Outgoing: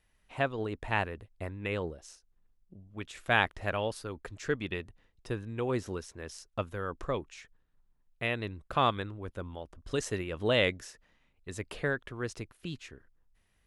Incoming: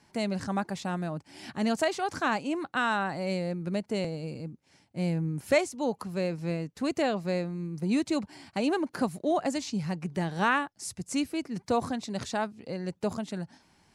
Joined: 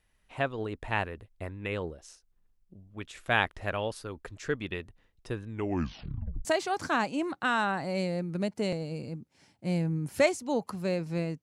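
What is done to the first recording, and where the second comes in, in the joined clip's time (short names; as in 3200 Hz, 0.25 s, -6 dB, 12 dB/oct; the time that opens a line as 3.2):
outgoing
5.49 tape stop 0.96 s
6.45 switch to incoming from 1.77 s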